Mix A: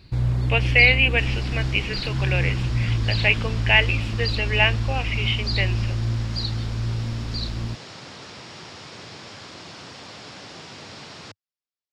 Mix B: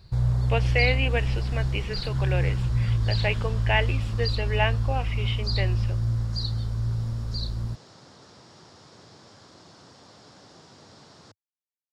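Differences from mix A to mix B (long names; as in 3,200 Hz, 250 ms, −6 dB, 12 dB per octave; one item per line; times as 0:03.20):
first sound: add parametric band 290 Hz −13 dB 0.75 octaves
second sound −8.5 dB
master: add parametric band 2,500 Hz −11.5 dB 1 octave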